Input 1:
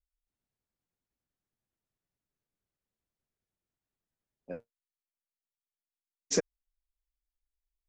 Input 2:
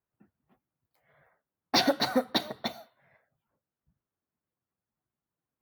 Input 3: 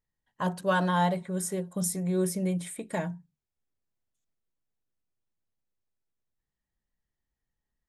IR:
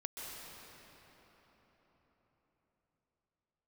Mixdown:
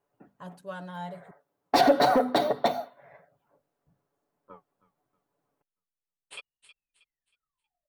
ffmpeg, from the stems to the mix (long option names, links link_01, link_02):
-filter_complex "[0:a]aeval=exprs='val(0)*sin(2*PI*1700*n/s+1700*0.7/0.31*sin(2*PI*0.31*n/s))':channel_layout=same,volume=-15.5dB,asplit=2[link_01][link_02];[link_02]volume=-11dB[link_03];[1:a]bandreject=frequency=50:width_type=h:width=6,bandreject=frequency=100:width_type=h:width=6,bandreject=frequency=150:width_type=h:width=6,bandreject=frequency=200:width_type=h:width=6,bandreject=frequency=250:width_type=h:width=6,asoftclip=type=tanh:threshold=-24.5dB,volume=1.5dB[link_04];[2:a]volume=-14.5dB,asplit=3[link_05][link_06][link_07];[link_05]atrim=end=1.31,asetpts=PTS-STARTPTS,afade=type=out:start_time=1.306:duration=0.004:curve=hsin[link_08];[link_06]atrim=start=1.31:end=3.19,asetpts=PTS-STARTPTS,volume=0[link_09];[link_07]atrim=start=3.19,asetpts=PTS-STARTPTS,afade=type=in:duration=0.004:curve=hsin[link_10];[link_08][link_09][link_10]concat=n=3:v=0:a=1[link_11];[link_01][link_04]amix=inputs=2:normalize=0,equalizer=frequency=580:width=0.52:gain=14.5,alimiter=limit=-13dB:level=0:latency=1:release=66,volume=0dB[link_12];[link_03]aecho=0:1:317|634|951|1268|1585:1|0.33|0.109|0.0359|0.0119[link_13];[link_11][link_12][link_13]amix=inputs=3:normalize=0,aecho=1:1:7:0.43"